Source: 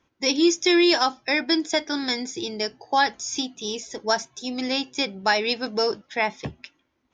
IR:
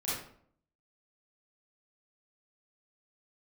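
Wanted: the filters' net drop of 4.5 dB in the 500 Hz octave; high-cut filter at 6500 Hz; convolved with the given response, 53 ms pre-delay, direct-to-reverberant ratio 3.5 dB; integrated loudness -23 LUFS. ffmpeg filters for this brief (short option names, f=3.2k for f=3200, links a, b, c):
-filter_complex "[0:a]lowpass=6.5k,equalizer=f=500:t=o:g=-7,asplit=2[a][b];[1:a]atrim=start_sample=2205,adelay=53[c];[b][c]afir=irnorm=-1:irlink=0,volume=-8.5dB[d];[a][d]amix=inputs=2:normalize=0,volume=1dB"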